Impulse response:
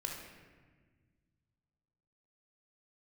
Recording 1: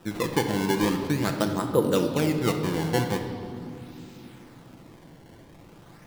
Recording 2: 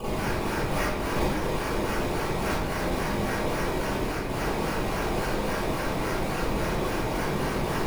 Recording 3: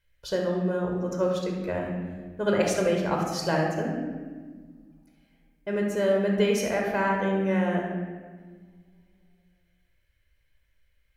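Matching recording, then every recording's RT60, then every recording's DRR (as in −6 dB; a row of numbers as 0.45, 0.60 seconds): 3; 3.0, 0.70, 1.5 seconds; 4.0, −9.5, 0.5 decibels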